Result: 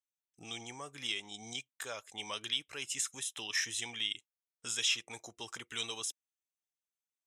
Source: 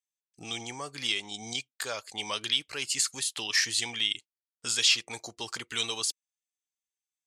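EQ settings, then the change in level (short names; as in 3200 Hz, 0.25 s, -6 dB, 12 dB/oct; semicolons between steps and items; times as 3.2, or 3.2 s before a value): Butterworth band-stop 4500 Hz, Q 4.1; -7.0 dB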